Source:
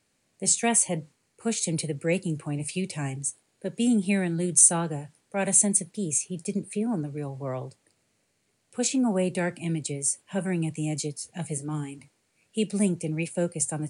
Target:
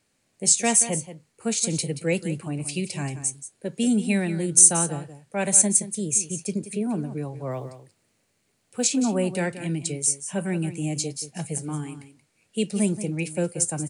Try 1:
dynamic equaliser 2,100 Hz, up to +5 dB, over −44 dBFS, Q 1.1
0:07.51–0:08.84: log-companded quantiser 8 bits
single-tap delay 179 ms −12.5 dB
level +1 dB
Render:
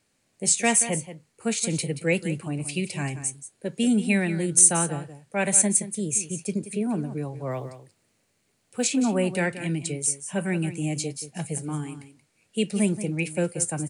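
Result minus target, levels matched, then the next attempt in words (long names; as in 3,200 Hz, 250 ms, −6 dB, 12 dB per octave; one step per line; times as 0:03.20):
2,000 Hz band +5.0 dB
dynamic equaliser 5,700 Hz, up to +5 dB, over −44 dBFS, Q 1.1
0:07.51–0:08.84: log-companded quantiser 8 bits
single-tap delay 179 ms −12.5 dB
level +1 dB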